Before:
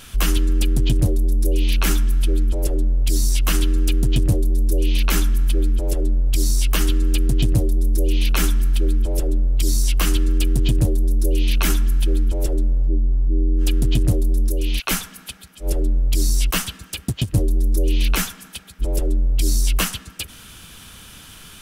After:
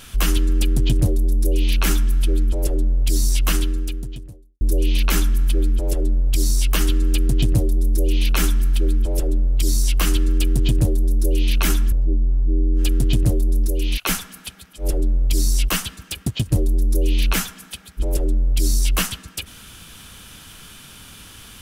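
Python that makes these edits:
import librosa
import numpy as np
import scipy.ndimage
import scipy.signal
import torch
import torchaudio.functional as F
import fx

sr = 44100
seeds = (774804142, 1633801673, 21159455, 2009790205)

y = fx.edit(x, sr, fx.fade_out_span(start_s=3.5, length_s=1.11, curve='qua'),
    fx.cut(start_s=11.92, length_s=0.82), tone=tone)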